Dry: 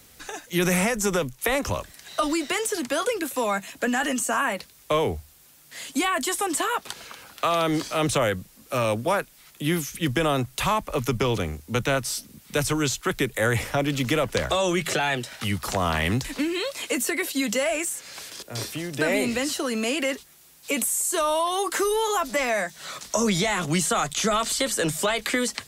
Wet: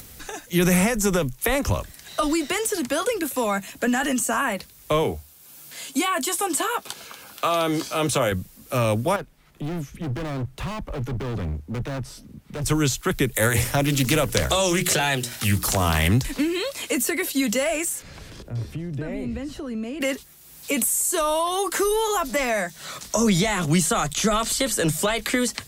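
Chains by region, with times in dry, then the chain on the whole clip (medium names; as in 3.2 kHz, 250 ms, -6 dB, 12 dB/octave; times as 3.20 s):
5.03–8.32 s: high-pass 240 Hz 6 dB/octave + band-stop 1.9 kHz, Q 10 + doubling 15 ms -11 dB
9.16–12.66 s: low-pass 1.1 kHz 6 dB/octave + hard clipper -30.5 dBFS
13.35–16.08 s: treble shelf 4.9 kHz +11.5 dB + hum notches 60/120/180/240/300/360/420/480 Hz + loudspeaker Doppler distortion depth 0.21 ms
18.02–20.01 s: RIAA curve playback + compression 2:1, threshold -41 dBFS
whole clip: bass shelf 210 Hz +9 dB; upward compressor, threshold -39 dBFS; treble shelf 11 kHz +7 dB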